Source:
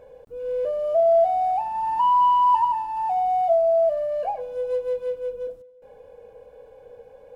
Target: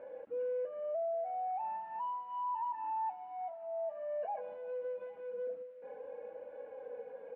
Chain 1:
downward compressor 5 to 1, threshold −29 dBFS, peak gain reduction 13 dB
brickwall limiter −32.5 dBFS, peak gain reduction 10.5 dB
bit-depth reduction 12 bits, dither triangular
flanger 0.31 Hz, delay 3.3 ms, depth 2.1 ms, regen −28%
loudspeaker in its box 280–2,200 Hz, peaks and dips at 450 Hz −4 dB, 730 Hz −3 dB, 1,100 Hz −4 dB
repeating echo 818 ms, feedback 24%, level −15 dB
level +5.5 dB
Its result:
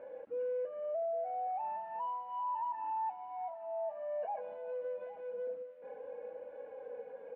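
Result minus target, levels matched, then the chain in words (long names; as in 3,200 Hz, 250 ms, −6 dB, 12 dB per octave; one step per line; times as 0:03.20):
echo-to-direct +9 dB
downward compressor 5 to 1, threshold −29 dBFS, peak gain reduction 13 dB
brickwall limiter −32.5 dBFS, peak gain reduction 10.5 dB
bit-depth reduction 12 bits, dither triangular
flanger 0.31 Hz, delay 3.3 ms, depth 2.1 ms, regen −28%
loudspeaker in its box 280–2,200 Hz, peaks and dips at 450 Hz −4 dB, 730 Hz −3 dB, 1,100 Hz −4 dB
repeating echo 818 ms, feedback 24%, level −24 dB
level +5.5 dB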